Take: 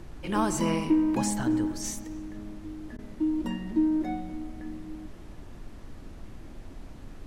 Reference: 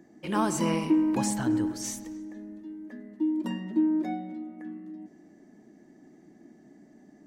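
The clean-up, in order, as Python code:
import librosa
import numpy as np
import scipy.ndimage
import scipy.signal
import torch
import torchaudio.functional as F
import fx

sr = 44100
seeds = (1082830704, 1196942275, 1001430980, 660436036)

y = fx.fix_interpolate(x, sr, at_s=(2.97,), length_ms=15.0)
y = fx.noise_reduce(y, sr, print_start_s=5.11, print_end_s=5.61, reduce_db=12.0)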